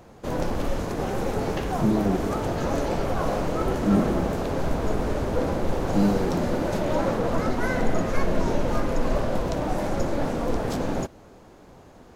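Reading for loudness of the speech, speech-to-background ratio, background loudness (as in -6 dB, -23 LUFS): -26.5 LUFS, 0.5 dB, -27.0 LUFS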